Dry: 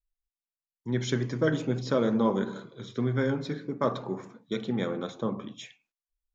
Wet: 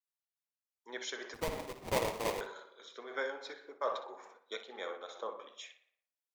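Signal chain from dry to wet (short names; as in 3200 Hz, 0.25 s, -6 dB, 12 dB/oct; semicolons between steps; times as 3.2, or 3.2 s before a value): HPF 520 Hz 24 dB/oct; 1.34–2.41 sample-rate reducer 1500 Hz, jitter 20%; tape echo 60 ms, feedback 53%, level -8.5 dB, low-pass 3500 Hz; noise-modulated level, depth 60%; gain -1 dB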